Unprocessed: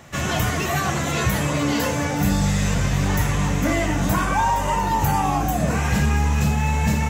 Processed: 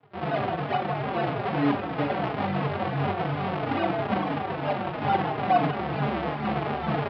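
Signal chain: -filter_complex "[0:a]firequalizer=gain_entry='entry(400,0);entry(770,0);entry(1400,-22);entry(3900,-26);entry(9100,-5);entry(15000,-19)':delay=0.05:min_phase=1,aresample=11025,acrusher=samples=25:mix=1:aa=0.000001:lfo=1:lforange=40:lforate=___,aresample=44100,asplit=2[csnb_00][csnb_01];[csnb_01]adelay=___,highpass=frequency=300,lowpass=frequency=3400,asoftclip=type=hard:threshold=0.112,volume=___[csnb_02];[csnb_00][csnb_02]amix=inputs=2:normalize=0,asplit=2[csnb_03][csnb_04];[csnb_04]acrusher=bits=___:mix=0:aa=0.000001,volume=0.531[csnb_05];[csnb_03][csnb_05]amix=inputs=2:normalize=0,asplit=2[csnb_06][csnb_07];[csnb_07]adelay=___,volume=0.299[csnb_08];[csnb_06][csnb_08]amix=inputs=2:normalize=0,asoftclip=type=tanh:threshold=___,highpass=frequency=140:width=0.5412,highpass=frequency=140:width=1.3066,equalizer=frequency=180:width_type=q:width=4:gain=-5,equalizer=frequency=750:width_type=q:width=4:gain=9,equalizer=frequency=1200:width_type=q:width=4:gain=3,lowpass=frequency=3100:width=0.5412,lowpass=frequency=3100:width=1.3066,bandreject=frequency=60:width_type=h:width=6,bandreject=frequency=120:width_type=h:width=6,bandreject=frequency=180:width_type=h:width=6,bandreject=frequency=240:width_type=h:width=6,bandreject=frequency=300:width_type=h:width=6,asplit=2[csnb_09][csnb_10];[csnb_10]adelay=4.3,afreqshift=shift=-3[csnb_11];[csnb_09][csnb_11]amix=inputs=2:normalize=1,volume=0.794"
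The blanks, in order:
2.3, 170, 0.447, 5, 42, 0.266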